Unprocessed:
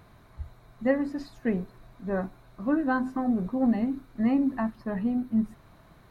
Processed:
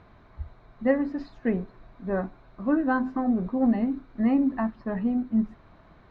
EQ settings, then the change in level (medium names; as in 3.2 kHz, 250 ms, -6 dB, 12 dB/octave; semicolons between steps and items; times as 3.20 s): distance through air 200 m; peaking EQ 130 Hz -6 dB 0.65 oct; +2.5 dB